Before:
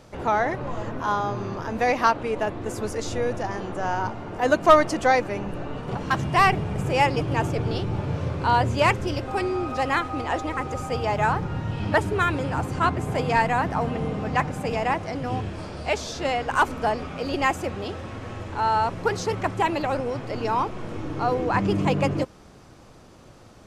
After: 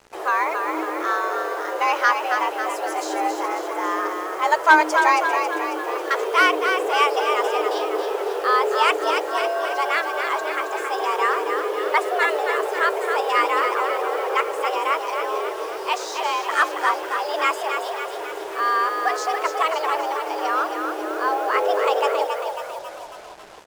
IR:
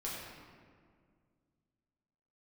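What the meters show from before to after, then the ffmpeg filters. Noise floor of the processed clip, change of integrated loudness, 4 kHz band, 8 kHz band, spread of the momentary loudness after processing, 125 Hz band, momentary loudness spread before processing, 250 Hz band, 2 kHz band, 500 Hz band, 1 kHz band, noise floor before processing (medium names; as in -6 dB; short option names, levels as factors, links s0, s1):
-32 dBFS, +3.0 dB, +5.0 dB, +4.0 dB, 8 LU, under -35 dB, 10 LU, -5.5 dB, +6.0 dB, +2.5 dB, +3.5 dB, -49 dBFS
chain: -filter_complex "[0:a]afreqshift=310,asplit=8[s0][s1][s2][s3][s4][s5][s6][s7];[s1]adelay=273,afreqshift=35,volume=0.501[s8];[s2]adelay=546,afreqshift=70,volume=0.282[s9];[s3]adelay=819,afreqshift=105,volume=0.157[s10];[s4]adelay=1092,afreqshift=140,volume=0.0881[s11];[s5]adelay=1365,afreqshift=175,volume=0.0495[s12];[s6]adelay=1638,afreqshift=210,volume=0.0275[s13];[s7]adelay=1911,afreqshift=245,volume=0.0155[s14];[s0][s8][s9][s10][s11][s12][s13][s14]amix=inputs=8:normalize=0,acrusher=bits=6:mix=0:aa=0.5,volume=1.12"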